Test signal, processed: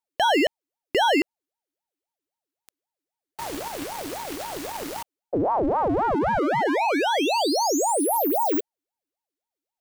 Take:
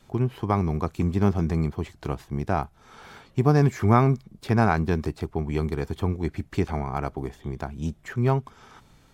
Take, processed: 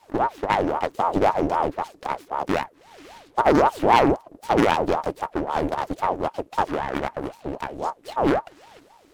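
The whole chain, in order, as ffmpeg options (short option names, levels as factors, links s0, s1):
-af "aeval=exprs='abs(val(0))':c=same,aeval=exprs='val(0)*sin(2*PI*610*n/s+610*0.55/3.8*sin(2*PI*3.8*n/s))':c=same,volume=1.68"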